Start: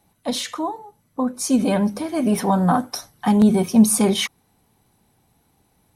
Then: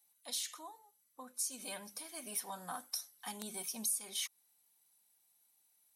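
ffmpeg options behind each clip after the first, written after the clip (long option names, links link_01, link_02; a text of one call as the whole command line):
ffmpeg -i in.wav -af "aderivative,acompressor=threshold=-30dB:ratio=4,volume=-5dB" out.wav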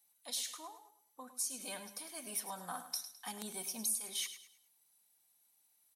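ffmpeg -i in.wav -af "aecho=1:1:105|210|315|420:0.266|0.0905|0.0308|0.0105" out.wav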